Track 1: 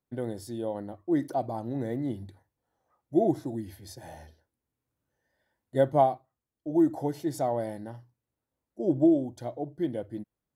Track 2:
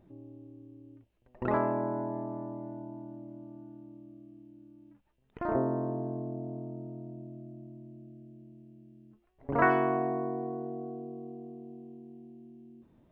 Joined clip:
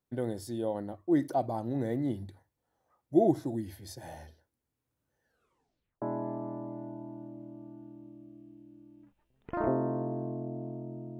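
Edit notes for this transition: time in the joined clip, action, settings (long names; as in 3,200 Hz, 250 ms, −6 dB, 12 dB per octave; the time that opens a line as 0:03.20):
track 1
0:05.23: tape stop 0.79 s
0:06.02: continue with track 2 from 0:01.90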